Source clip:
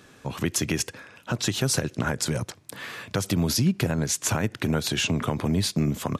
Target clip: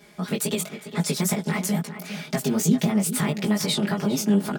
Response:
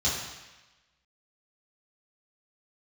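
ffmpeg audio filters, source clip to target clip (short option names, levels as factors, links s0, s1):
-filter_complex "[0:a]equalizer=f=130:w=3.4:g=5,aecho=1:1:6.5:0.9,flanger=delay=22.5:depth=4.7:speed=2.8,asplit=2[s0][s1];[s1]adelay=548.1,volume=0.282,highshelf=f=4000:g=-12.3[s2];[s0][s2]amix=inputs=2:normalize=0,asetrate=59535,aresample=44100"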